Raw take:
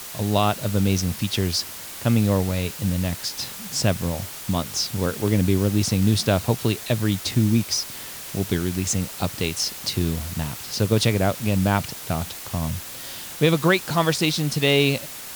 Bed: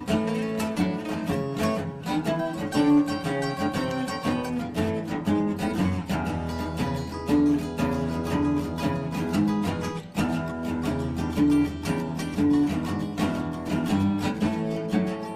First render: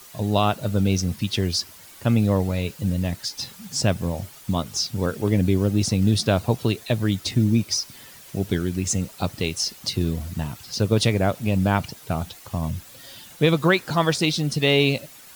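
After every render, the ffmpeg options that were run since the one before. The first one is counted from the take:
-af "afftdn=nr=11:nf=-36"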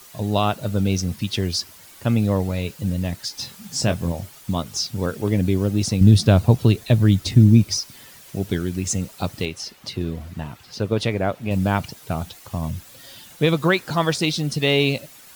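-filter_complex "[0:a]asettb=1/sr,asplit=3[a][b][c];[a]atrim=end=3.324[d];[b]atrim=start=3.32:end=4.12,asetpts=PTS-STARTPTS,afade=t=in:d=0.004:c=qsin,afade=t=out:st=0.796:d=0.004:c=qsin,asplit=2[e][f];[f]adelay=24,volume=-8dB[g];[e][g]amix=inputs=2:normalize=0,atrim=end_sample=35280[h];[c]atrim=start=4.116[i];[d][h]acrossfade=d=0.004:c1=hsin:c2=qsin[j];[j][i]acrossfade=d=0.004:c1=qsin:c2=hsin,asettb=1/sr,asplit=3[k][l][m];[k]atrim=end=6.014[n];[l]atrim=start=6.01:end=7.79,asetpts=PTS-STARTPTS,afade=t=in:d=0.004:c=qsin,afade=t=out:st=1.776:d=0.004:c=qsin,lowshelf=f=220:g=11[o];[m]atrim=start=7.786[p];[n][o]acrossfade=d=0.004:c1=hsin:c2=qsin[q];[q][p]acrossfade=d=0.004:c1=qsin:c2=hsin,asettb=1/sr,asplit=3[r][s][t];[r]atrim=end=9.454[u];[s]atrim=start=9.45:end=11.51,asetpts=PTS-STARTPTS,afade=t=in:d=0.004:c=qsin,afade=t=out:st=2.056:d=0.004:c=qsin,bass=f=250:g=-4,treble=f=4k:g=-10[v];[t]atrim=start=11.506[w];[u][v]acrossfade=d=0.004:c1=hsin:c2=qsin[x];[x][w]acrossfade=d=0.004:c1=qsin:c2=hsin"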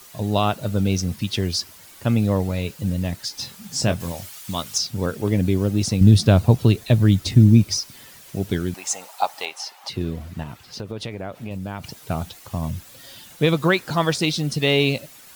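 -filter_complex "[0:a]asettb=1/sr,asplit=3[a][b][c];[a]atrim=end=4.004[d];[b]atrim=start=4:end=4.78,asetpts=PTS-STARTPTS,afade=t=in:d=0.004:c=qsin,afade=t=out:st=0.776:d=0.004:c=qsin,tiltshelf=f=940:g=-6.5[e];[c]atrim=start=4.776[f];[d][e]acrossfade=d=0.004:c1=hsin:c2=qsin[g];[g][f]acrossfade=d=0.004:c1=qsin:c2=hsin,asettb=1/sr,asplit=3[h][i][j];[h]atrim=end=8.744[k];[i]atrim=start=8.74:end=9.9,asetpts=PTS-STARTPTS,afade=t=in:d=0.004:c=qsin,afade=t=out:st=1.156:d=0.004:c=qsin,highpass=f=810:t=q:w=4.8[l];[j]atrim=start=9.896[m];[k][l]acrossfade=d=0.004:c1=hsin:c2=qsin[n];[n][m]acrossfade=d=0.004:c1=qsin:c2=hsin,asettb=1/sr,asplit=3[o][p][q];[o]atrim=end=10.434[r];[p]atrim=start=10.43:end=12.04,asetpts=PTS-STARTPTS,afade=t=in:d=0.004:c=qsin,afade=t=out:st=1.606:d=0.004:c=qsin,acompressor=threshold=-28dB:ratio=4:attack=3.2:release=140:knee=1:detection=peak[s];[q]atrim=start=12.036[t];[r][s]acrossfade=d=0.004:c1=hsin:c2=qsin[u];[u][t]acrossfade=d=0.004:c1=qsin:c2=hsin"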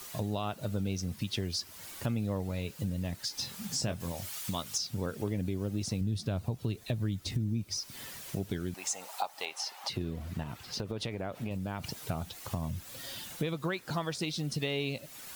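-af "alimiter=limit=-10dB:level=0:latency=1:release=453,acompressor=threshold=-34dB:ratio=3"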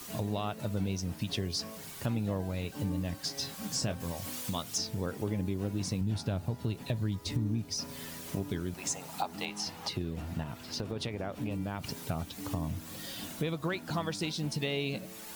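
-filter_complex "[1:a]volume=-20.5dB[a];[0:a][a]amix=inputs=2:normalize=0"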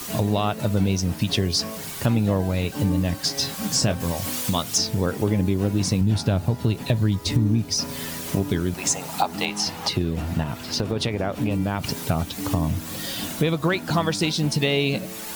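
-af "volume=11.5dB"

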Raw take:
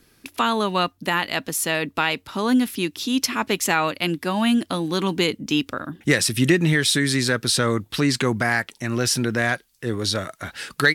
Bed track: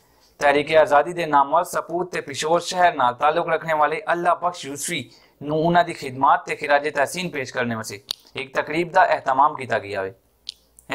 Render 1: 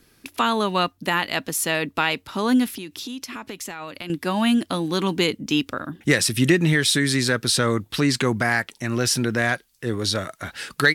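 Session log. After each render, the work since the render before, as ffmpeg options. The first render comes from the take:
-filter_complex "[0:a]asettb=1/sr,asplit=3[a][b][c];[a]atrim=end=2.734[d];[b]atrim=start=2.73:end=4.1,asetpts=PTS-STARTPTS,afade=t=in:d=0.004:c=qsin,afade=t=out:st=1.366:d=0.004:c=qsin,acompressor=threshold=-29dB:ratio=16:attack=3.2:release=140:knee=1:detection=peak[e];[c]atrim=start=4.096[f];[d][e]acrossfade=d=0.004:c1=hsin:c2=qsin[g];[g][f]acrossfade=d=0.004:c1=qsin:c2=hsin"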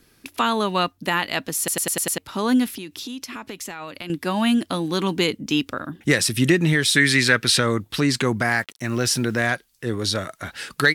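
-filter_complex "[0:a]asettb=1/sr,asplit=3[a][b][c];[a]atrim=end=6.964[d];[b]atrim=start=6.96:end=7.6,asetpts=PTS-STARTPTS,afade=t=in:d=0.004:c=qsin,afade=t=out:st=0.636:d=0.004:c=qsin,equalizer=f=2.2k:w=1:g=10[e];[c]atrim=start=7.596[f];[d][e]acrossfade=d=0.004:c1=hsin:c2=qsin[g];[g][f]acrossfade=d=0.004:c1=qsin:c2=hsin,asettb=1/sr,asplit=3[h][i][j];[h]atrim=end=8.474[k];[i]atrim=start=8.47:end=9.47,asetpts=PTS-STARTPTS,afade=t=in:d=0.004:c=qsin,afade=t=out:st=0.996:d=0.004:c=qsin,acrusher=bits=7:mix=0:aa=0.5[l];[j]atrim=start=9.466[m];[k][l]acrossfade=d=0.004:c1=hsin:c2=qsin[n];[n][m]acrossfade=d=0.004:c1=qsin:c2=hsin,asplit=7[o][p][q][r][s][t][u];[o]atrim=end=1.682[v];[p]atrim=start=1.578:end=1.682[w];[q]atrim=start=1.578:end=1.682[x];[r]atrim=start=1.578:end=1.682[y];[s]atrim=start=1.578:end=1.682[z];[t]atrim=start=1.578:end=1.682[aa];[u]atrim=start=2.178[ab];[v][w]acrossfade=d=0.004:c1=hsin:c2=hsin[ac];[ac][x]acrossfade=d=0.004:c1=hsin:c2=hsin[ad];[ad][y]acrossfade=d=0.004:c1=hsin:c2=hsin[ae];[ae][z]acrossfade=d=0.004:c1=hsin:c2=hsin[af];[af][aa]acrossfade=d=0.004:c1=hsin:c2=hsin[ag];[ag][ab]acrossfade=d=0.004:c1=hsin:c2=hsin"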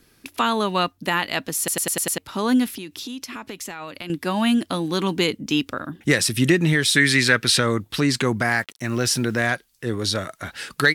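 -af anull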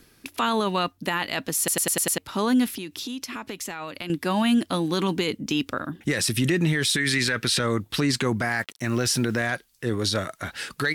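-af "areverse,acompressor=mode=upward:threshold=-35dB:ratio=2.5,areverse,alimiter=limit=-14dB:level=0:latency=1:release=15"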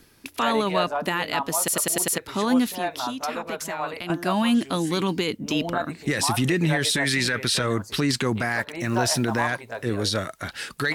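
-filter_complex "[1:a]volume=-12dB[a];[0:a][a]amix=inputs=2:normalize=0"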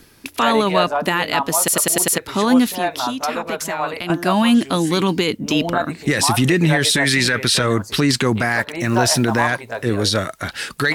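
-af "volume=6.5dB"

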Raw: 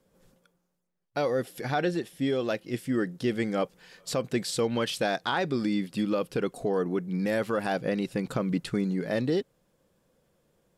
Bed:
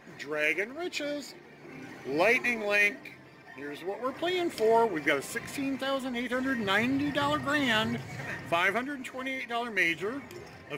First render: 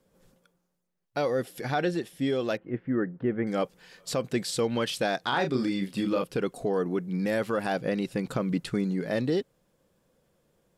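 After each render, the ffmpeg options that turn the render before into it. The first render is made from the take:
-filter_complex "[0:a]asettb=1/sr,asplit=3[a][b][c];[a]atrim=end=2.574[d];[b]atrim=start=2.57:end=3.47,asetpts=PTS-STARTPTS,afade=t=in:d=0.004:c=qsin,afade=t=out:st=0.896:d=0.004:c=qsin,lowpass=f=1.8k:w=0.5412,lowpass=f=1.8k:w=1.3066[e];[c]atrim=start=3.466[f];[d][e]acrossfade=d=0.004:c1=hsin:c2=qsin[g];[g][f]acrossfade=d=0.004:c1=qsin:c2=hsin,asettb=1/sr,asplit=3[h][i][j];[h]atrim=end=5.294[k];[i]atrim=start=5.29:end=6.24,asetpts=PTS-STARTPTS,afade=t=in:d=0.004:c=qsin,afade=t=out:st=0.946:d=0.004:c=qsin,asplit=2[l][m];[m]adelay=31,volume=-5.5dB[n];[l][n]amix=inputs=2:normalize=0,atrim=end_sample=41895[o];[j]atrim=start=6.236[p];[k][o]acrossfade=d=0.004:c1=hsin:c2=qsin[q];[q][p]acrossfade=d=0.004:c1=qsin:c2=hsin"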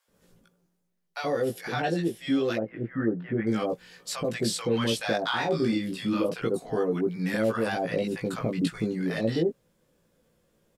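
-filter_complex "[0:a]asplit=2[a][b];[b]adelay=18,volume=-2.5dB[c];[a][c]amix=inputs=2:normalize=0,acrossover=split=830[d][e];[d]adelay=80[f];[f][e]amix=inputs=2:normalize=0"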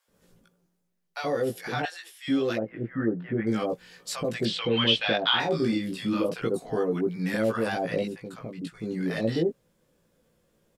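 -filter_complex "[0:a]asettb=1/sr,asplit=3[a][b][c];[a]atrim=end=1.854[d];[b]atrim=start=1.85:end=2.28,asetpts=PTS-STARTPTS,afade=t=in:d=0.004:c=qsin,afade=t=out:st=0.426:d=0.004:c=qsin,highpass=f=1.1k:w=0.5412,highpass=f=1.1k:w=1.3066[e];[c]atrim=start=2.276[f];[d][e]acrossfade=d=0.004:c1=hsin:c2=qsin[g];[g][f]acrossfade=d=0.004:c1=qsin:c2=hsin,asettb=1/sr,asplit=3[h][i][j];[h]atrim=end=4.454[k];[i]atrim=start=4.45:end=5.4,asetpts=PTS-STARTPTS,afade=t=in:d=0.004:c=qsin,afade=t=out:st=0.946:d=0.004:c=qsin,lowpass=f=3.1k:t=q:w=3.8[l];[j]atrim=start=5.396[m];[k][l]acrossfade=d=0.004:c1=hsin:c2=qsin[n];[n][m]acrossfade=d=0.004:c1=qsin:c2=hsin,asplit=3[o][p][q];[o]atrim=end=8.16,asetpts=PTS-STARTPTS,afade=t=out:st=8.03:d=0.13:silence=0.334965[r];[p]atrim=start=8.16:end=8.81,asetpts=PTS-STARTPTS,volume=-9.5dB[s];[q]atrim=start=8.81,asetpts=PTS-STARTPTS,afade=t=in:d=0.13:silence=0.334965[t];[r][s][t]concat=n=3:v=0:a=1"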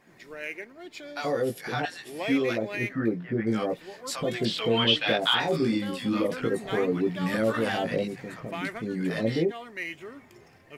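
-filter_complex "[1:a]volume=-8.5dB[a];[0:a][a]amix=inputs=2:normalize=0"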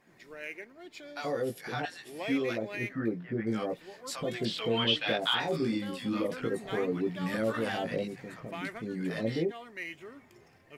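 -af "volume=-5dB"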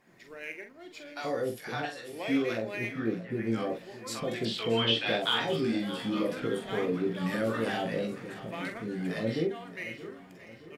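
-filter_complex "[0:a]asplit=2[a][b];[b]adelay=44,volume=-7dB[c];[a][c]amix=inputs=2:normalize=0,aecho=1:1:623|1246|1869|2492|3115:0.168|0.089|0.0472|0.025|0.0132"

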